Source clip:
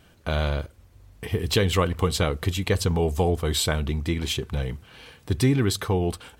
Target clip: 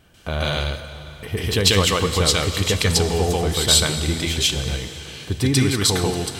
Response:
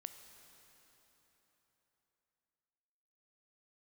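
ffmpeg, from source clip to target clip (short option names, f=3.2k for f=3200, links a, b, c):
-filter_complex "[0:a]asplit=2[a][b];[b]equalizer=f=5.9k:w=0.35:g=13.5[c];[1:a]atrim=start_sample=2205,adelay=141[d];[c][d]afir=irnorm=-1:irlink=0,volume=3.5dB[e];[a][e]amix=inputs=2:normalize=0"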